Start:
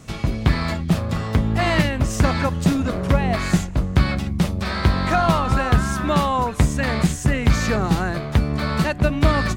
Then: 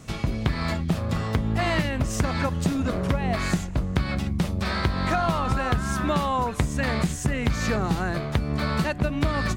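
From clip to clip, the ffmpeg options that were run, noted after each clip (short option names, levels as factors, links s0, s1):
-af "acompressor=threshold=0.126:ratio=6,volume=0.841"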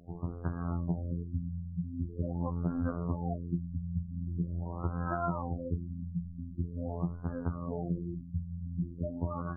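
-af "flanger=delay=5:depth=9.4:regen=87:speed=0.46:shape=sinusoidal,afftfilt=real='hypot(re,im)*cos(PI*b)':imag='0':win_size=2048:overlap=0.75,afftfilt=real='re*lt(b*sr/1024,230*pow(1700/230,0.5+0.5*sin(2*PI*0.44*pts/sr)))':imag='im*lt(b*sr/1024,230*pow(1700/230,0.5+0.5*sin(2*PI*0.44*pts/sr)))':win_size=1024:overlap=0.75,volume=0.841"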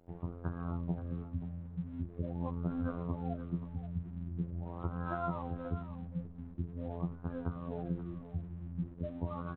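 -af "aecho=1:1:530:0.251,aresample=8000,aeval=exprs='sgn(val(0))*max(abs(val(0))-0.00168,0)':c=same,aresample=44100,volume=0.708"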